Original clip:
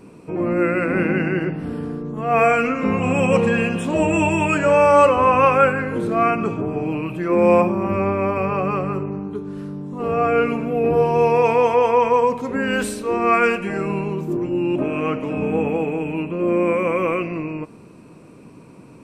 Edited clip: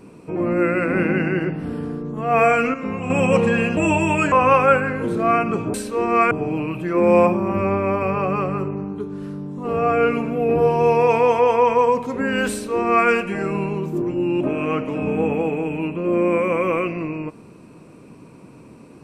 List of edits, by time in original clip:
2.74–3.1 gain -6.5 dB
3.77–4.08 cut
4.63–5.24 cut
12.86–13.43 copy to 6.66

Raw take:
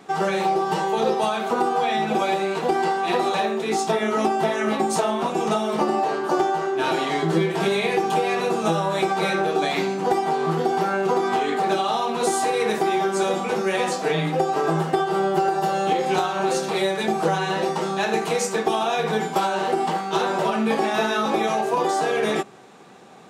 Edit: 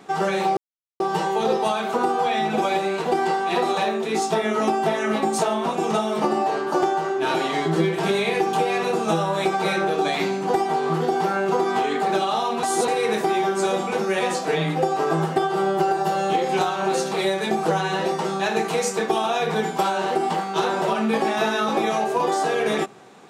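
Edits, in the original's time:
0.57 insert silence 0.43 s
12.2–12.45 reverse

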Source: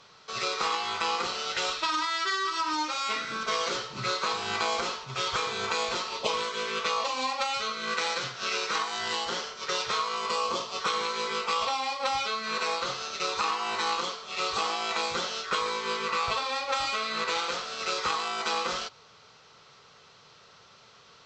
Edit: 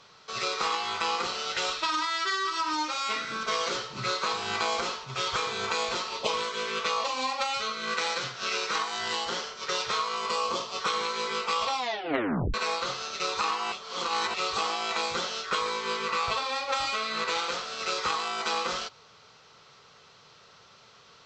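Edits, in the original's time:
11.78 tape stop 0.76 s
13.72–14.34 reverse

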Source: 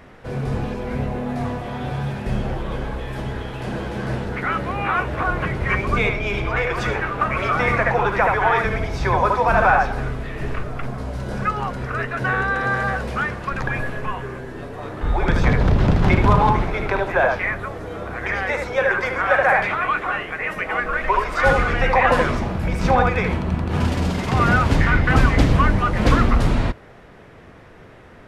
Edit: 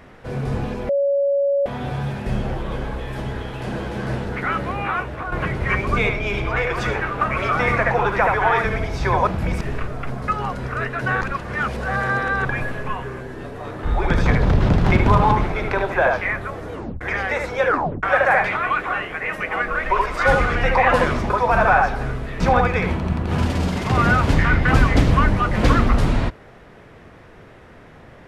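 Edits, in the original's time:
0.89–1.66 bleep 561 Hz -15.5 dBFS
4.68–5.32 fade out, to -8.5 dB
9.27–10.37 swap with 22.48–22.82
11.04–11.46 cut
12.39–13.63 reverse
17.91 tape stop 0.28 s
18.84 tape stop 0.37 s

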